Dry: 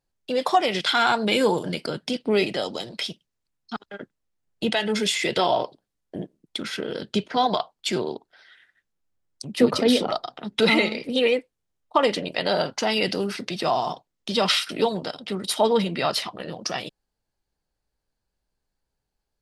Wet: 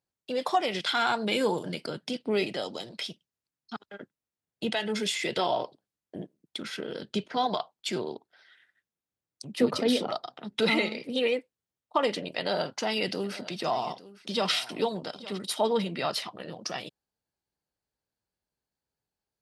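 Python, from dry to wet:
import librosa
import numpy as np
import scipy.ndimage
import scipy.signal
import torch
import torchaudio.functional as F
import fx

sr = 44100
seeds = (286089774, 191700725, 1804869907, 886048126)

y = fx.echo_single(x, sr, ms=858, db=-18.0, at=(13.23, 15.37), fade=0.02)
y = scipy.signal.sosfilt(scipy.signal.butter(2, 84.0, 'highpass', fs=sr, output='sos'), y)
y = y * librosa.db_to_amplitude(-6.0)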